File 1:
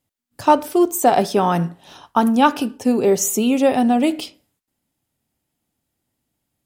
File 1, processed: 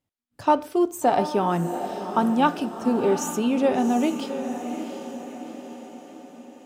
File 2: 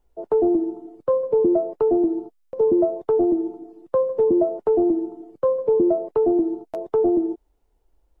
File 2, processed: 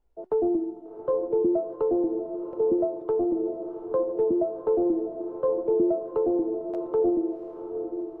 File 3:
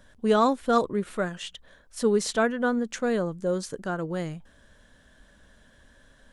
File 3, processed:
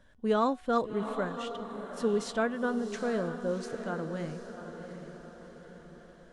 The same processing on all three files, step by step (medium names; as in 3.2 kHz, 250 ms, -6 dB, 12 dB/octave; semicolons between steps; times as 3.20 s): low-pass 4 kHz 6 dB/octave; de-hum 369 Hz, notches 37; on a send: echo that smears into a reverb 732 ms, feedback 52%, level -9 dB; on the sum: trim -5.5 dB